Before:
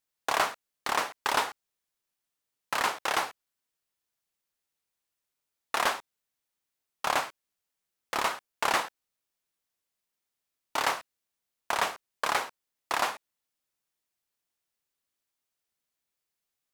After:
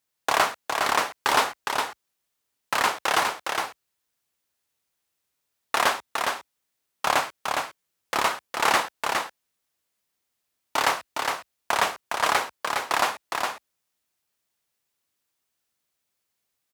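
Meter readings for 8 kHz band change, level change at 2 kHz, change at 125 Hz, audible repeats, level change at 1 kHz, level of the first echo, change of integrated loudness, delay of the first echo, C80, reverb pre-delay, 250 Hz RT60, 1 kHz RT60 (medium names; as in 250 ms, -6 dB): +6.5 dB, +6.5 dB, +7.0 dB, 1, +6.5 dB, -4.5 dB, +5.0 dB, 411 ms, no reverb, no reverb, no reverb, no reverb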